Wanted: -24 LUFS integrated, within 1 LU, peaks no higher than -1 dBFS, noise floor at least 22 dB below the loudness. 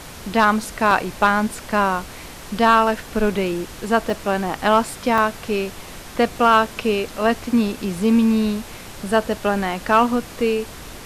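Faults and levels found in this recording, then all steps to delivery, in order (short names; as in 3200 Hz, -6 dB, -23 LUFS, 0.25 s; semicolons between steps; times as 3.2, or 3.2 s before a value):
dropouts 4; longest dropout 1.6 ms; noise floor -37 dBFS; noise floor target -42 dBFS; loudness -20.0 LUFS; peak -4.5 dBFS; loudness target -24.0 LUFS
-> interpolate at 0.91/4.1/5.18/6.65, 1.6 ms; noise print and reduce 6 dB; gain -4 dB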